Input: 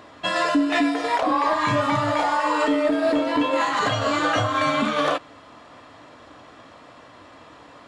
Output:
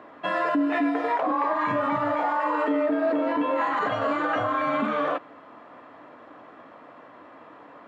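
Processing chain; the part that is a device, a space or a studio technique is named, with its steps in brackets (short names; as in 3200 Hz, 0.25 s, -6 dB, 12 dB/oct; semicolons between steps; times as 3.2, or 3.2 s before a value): DJ mixer with the lows and highs turned down (three-band isolator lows -19 dB, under 160 Hz, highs -21 dB, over 2300 Hz; limiter -16.5 dBFS, peak gain reduction 5.5 dB)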